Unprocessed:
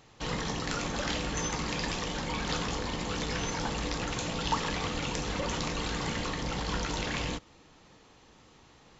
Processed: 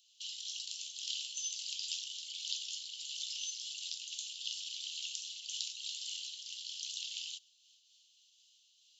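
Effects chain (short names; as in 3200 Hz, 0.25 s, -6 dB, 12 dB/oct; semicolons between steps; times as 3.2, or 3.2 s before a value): Chebyshev high-pass 2900 Hz, order 6; noise-modulated level, depth 55%; gain +2 dB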